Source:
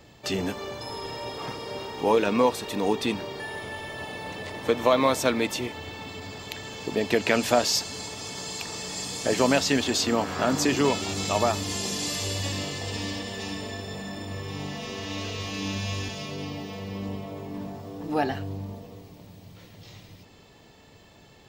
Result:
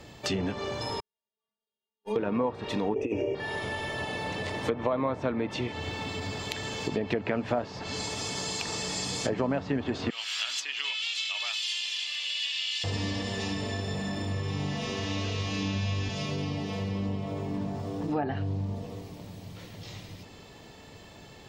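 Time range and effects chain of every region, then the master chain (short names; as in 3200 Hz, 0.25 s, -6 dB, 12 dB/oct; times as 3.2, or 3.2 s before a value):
1–2.16 gate -22 dBFS, range -50 dB + metallic resonator 210 Hz, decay 0.3 s, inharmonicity 0.008
2.94–3.35 EQ curve 120 Hz 0 dB, 180 Hz -14 dB, 310 Hz +9 dB, 510 Hz +11 dB, 1100 Hz -15 dB, 1700 Hz -12 dB, 2600 Hz +8 dB, 4000 Hz -26 dB, 6000 Hz +11 dB, 9700 Hz +2 dB + negative-ratio compressor -23 dBFS, ratio -0.5
10.1–12.84 resonant high-pass 3000 Hz, resonance Q 3.1 + high shelf 9000 Hz +11 dB
whole clip: treble ducked by the level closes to 1500 Hz, closed at -20 dBFS; dynamic EQ 120 Hz, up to +6 dB, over -44 dBFS, Q 0.99; compressor 2.5:1, threshold -34 dBFS; gain +4 dB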